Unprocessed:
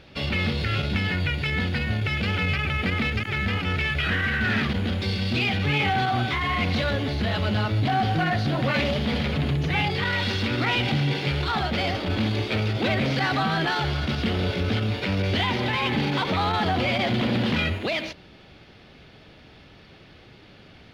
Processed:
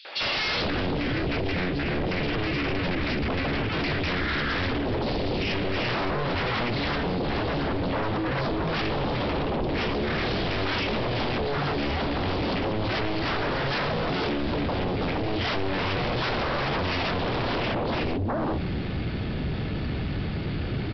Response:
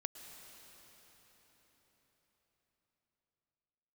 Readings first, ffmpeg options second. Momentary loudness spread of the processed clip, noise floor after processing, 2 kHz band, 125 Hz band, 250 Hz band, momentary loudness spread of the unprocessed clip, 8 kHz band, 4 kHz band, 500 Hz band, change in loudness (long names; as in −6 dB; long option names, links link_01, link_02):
3 LU, −29 dBFS, −3.5 dB, −4.5 dB, −1.0 dB, 3 LU, can't be measured, −3.0 dB, +2.0 dB, −3.0 dB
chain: -filter_complex "[0:a]lowshelf=frequency=410:gain=11,acrossover=split=600|3500[link_01][link_02][link_03];[link_02]adelay=50[link_04];[link_01]adelay=450[link_05];[link_05][link_04][link_03]amix=inputs=3:normalize=0,acompressor=threshold=-29dB:ratio=8,aresample=11025,aeval=exprs='0.0944*sin(PI/2*5.01*val(0)/0.0944)':channel_layout=same,aresample=44100,volume=-3dB"